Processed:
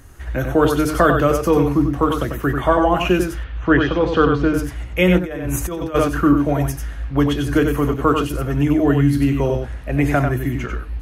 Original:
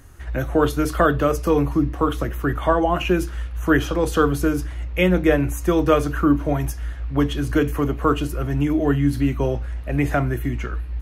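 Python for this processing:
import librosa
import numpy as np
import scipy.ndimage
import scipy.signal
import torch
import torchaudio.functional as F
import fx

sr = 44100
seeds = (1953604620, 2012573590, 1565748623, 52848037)

p1 = fx.lowpass(x, sr, hz=4100.0, slope=24, at=(3.34, 4.54))
p2 = p1 + fx.echo_single(p1, sr, ms=94, db=-5.5, dry=0)
p3 = fx.over_compress(p2, sr, threshold_db=-25.0, ratio=-1.0, at=(5.18, 5.94), fade=0.02)
y = F.gain(torch.from_numpy(p3), 2.5).numpy()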